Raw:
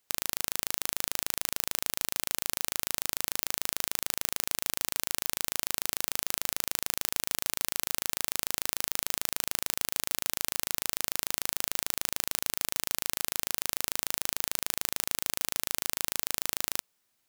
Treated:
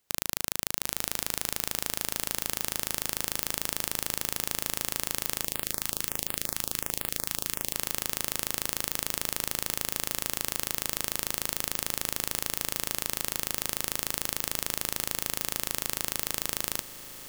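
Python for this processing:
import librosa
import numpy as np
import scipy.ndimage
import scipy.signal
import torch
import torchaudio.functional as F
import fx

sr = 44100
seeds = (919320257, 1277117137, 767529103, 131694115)

y = fx.low_shelf(x, sr, hz=400.0, db=6.0)
y = fx.echo_diffused(y, sr, ms=943, feedback_pct=62, wet_db=-13)
y = fx.filter_held_notch(y, sr, hz=11.0, low_hz=460.0, high_hz=6000.0, at=(5.43, 7.73), fade=0.02)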